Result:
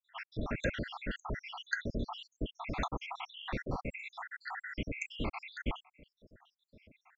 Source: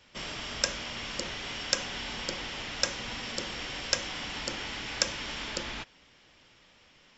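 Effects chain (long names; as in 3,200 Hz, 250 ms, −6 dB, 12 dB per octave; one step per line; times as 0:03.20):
time-frequency cells dropped at random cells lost 83%
low-pass filter 1,800 Hz 12 dB per octave
low-shelf EQ 330 Hz +6 dB
level +6.5 dB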